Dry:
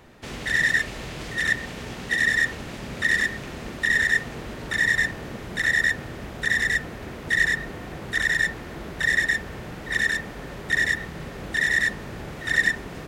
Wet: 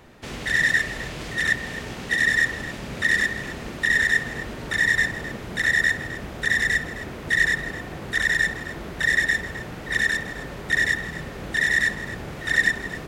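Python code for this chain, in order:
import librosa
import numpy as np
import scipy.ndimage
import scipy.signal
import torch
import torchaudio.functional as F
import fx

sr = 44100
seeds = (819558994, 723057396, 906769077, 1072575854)

y = x + 10.0 ** (-14.5 / 20.0) * np.pad(x, (int(261 * sr / 1000.0), 0))[:len(x)]
y = F.gain(torch.from_numpy(y), 1.0).numpy()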